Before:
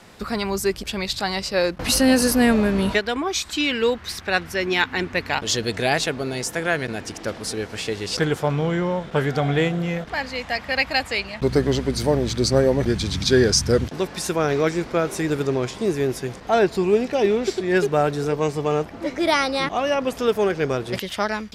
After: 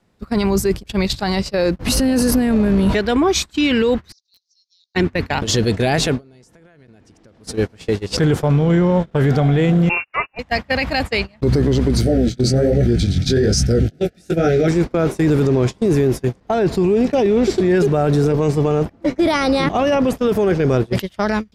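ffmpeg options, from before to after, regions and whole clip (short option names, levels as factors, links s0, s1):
-filter_complex "[0:a]asettb=1/sr,asplit=3[s0][s1][s2];[s0]atrim=end=4.124[s3];[s1]atrim=start=4.12:end=4.95,asetpts=PTS-STARTPTS,afade=t=in:d=0.004:c=qsin,afade=t=out:st=0.826:d=0.004:c=qsin,asuperpass=centerf=5200:order=8:qfactor=2,aeval=exprs='(mod(15*val(0)+1,2)-1)/15':c=same[s4];[s2]atrim=start=4.946[s5];[s3][s4]acrossfade=d=0.004:c1=hsin:c2=qsin[s6];[s6][s5]acrossfade=d=0.004:c1=qsin:c2=hsin,asettb=1/sr,asplit=3[s7][s8][s9];[s7]atrim=end=6.184[s10];[s8]atrim=start=6.18:end=7.41,asetpts=PTS-STARTPTS,afade=t=in:d=0.004:c=qsin,afade=t=out:st=1.226:d=0.004:c=qsin,lowpass=11000,acompressor=threshold=0.0398:ratio=12:attack=3.2:release=140:knee=1:detection=peak[s11];[s9]atrim=start=7.406[s12];[s10][s11]acrossfade=d=0.004:c1=hsin:c2=qsin[s13];[s13][s12]acrossfade=d=0.004:c1=qsin:c2=hsin,asettb=1/sr,asplit=3[s14][s15][s16];[s14]atrim=end=9.894[s17];[s15]atrim=start=9.89:end=10.39,asetpts=PTS-STARTPTS,afade=t=in:d=0.004:c=qsin,afade=t=out:st=0.496:d=0.004:c=qsin,bandreject=f=50:t=h:w=6,bandreject=f=100:t=h:w=6,bandreject=f=150:t=h:w=6,bandreject=f=200:t=h:w=6,bandreject=f=250:t=h:w=6,agate=range=0.2:threshold=0.0251:ratio=16:release=100:detection=peak,lowpass=f=2500:t=q:w=0.5098,lowpass=f=2500:t=q:w=0.6013,lowpass=f=2500:t=q:w=0.9,lowpass=f=2500:t=q:w=2.563,afreqshift=-2900[s18];[s16]atrim=start=10.386[s19];[s17][s18]acrossfade=d=0.004:c1=hsin:c2=qsin[s20];[s20][s19]acrossfade=d=0.004:c1=qsin:c2=hsin,asettb=1/sr,asplit=3[s21][s22][s23];[s21]atrim=end=12.014[s24];[s22]atrim=start=12.01:end=14.68,asetpts=PTS-STARTPTS,afade=t=in:d=0.004:c=qsin,afade=t=out:st=2.666:d=0.004:c=qsin,flanger=delay=16:depth=7.3:speed=1.2,asuperstop=centerf=1000:order=20:qfactor=2.2[s25];[s23]atrim=start=14.676[s26];[s24][s25]acrossfade=d=0.004:c1=hsin:c2=qsin[s27];[s27][s26]acrossfade=d=0.004:c1=qsin:c2=hsin,agate=range=0.0501:threshold=0.0501:ratio=16:detection=peak,lowshelf=f=470:g=11,alimiter=limit=0.211:level=0:latency=1:release=10,volume=1.78"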